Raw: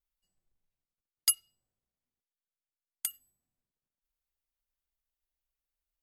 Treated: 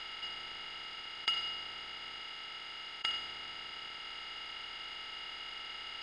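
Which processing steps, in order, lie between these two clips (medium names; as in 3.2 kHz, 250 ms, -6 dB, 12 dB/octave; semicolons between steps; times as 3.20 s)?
spectral levelling over time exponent 0.2; low-pass 3.1 kHz 24 dB/octave; trim +6 dB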